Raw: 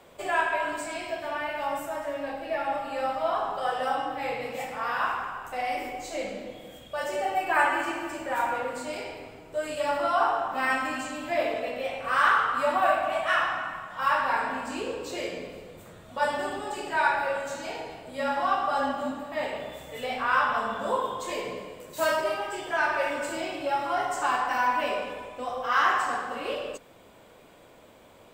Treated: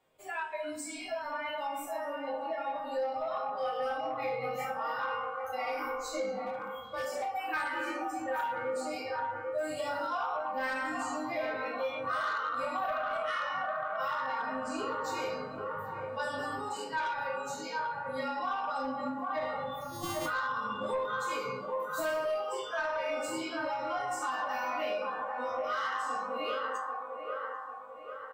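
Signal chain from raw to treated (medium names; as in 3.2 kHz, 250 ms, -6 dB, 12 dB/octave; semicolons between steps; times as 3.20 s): 19.81–20.26 s: sorted samples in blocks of 128 samples; in parallel at -1 dB: peak limiter -20 dBFS, peak gain reduction 9.5 dB; on the sum: spectral noise reduction 19 dB; chord resonator G#2 major, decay 0.26 s; on a send: feedback echo behind a band-pass 793 ms, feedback 47%, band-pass 820 Hz, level -6 dB; on the sum: saturation -27 dBFS, distortion -18 dB; compression 6:1, threshold -38 dBFS, peak gain reduction 8 dB; doubling 21 ms -13 dB; 6.44–7.33 s: hard clipper -37.5 dBFS, distortion -35 dB; 9.58–10.07 s: companded quantiser 8-bit; trim +7 dB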